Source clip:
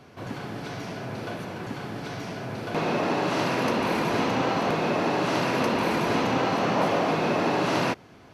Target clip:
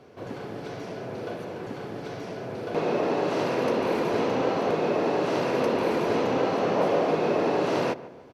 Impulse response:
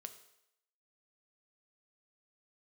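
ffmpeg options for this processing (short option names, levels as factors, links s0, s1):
-filter_complex "[0:a]equalizer=f=460:w=1.3:g=10,asplit=2[s0][s1];[s1]adelay=148,lowpass=f=1700:p=1,volume=0.158,asplit=2[s2][s3];[s3]adelay=148,lowpass=f=1700:p=1,volume=0.48,asplit=2[s4][s5];[s5]adelay=148,lowpass=f=1700:p=1,volume=0.48,asplit=2[s6][s7];[s7]adelay=148,lowpass=f=1700:p=1,volume=0.48[s8];[s0][s2][s4][s6][s8]amix=inputs=5:normalize=0,volume=0.531" -ar 44100 -c:a nellymoser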